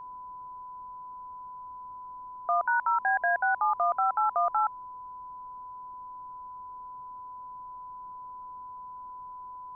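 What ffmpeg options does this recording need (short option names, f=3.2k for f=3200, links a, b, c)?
-af "bandreject=f=1k:w=30,agate=range=-21dB:threshold=-35dB"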